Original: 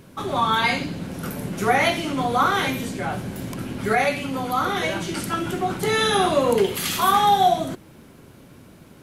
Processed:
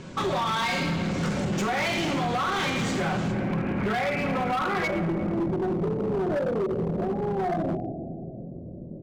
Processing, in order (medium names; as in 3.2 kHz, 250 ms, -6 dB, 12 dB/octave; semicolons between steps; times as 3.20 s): speakerphone echo 350 ms, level -22 dB; peak limiter -14.5 dBFS, peak gain reduction 7 dB; elliptic low-pass 7.5 kHz, stop band 60 dB, from 3.31 s 2.4 kHz, from 4.87 s 620 Hz; doubling 24 ms -10.5 dB; simulated room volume 3700 m³, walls mixed, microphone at 1 m; compression 6:1, threshold -27 dBFS, peak gain reduction 9 dB; overload inside the chain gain 29.5 dB; trim +6.5 dB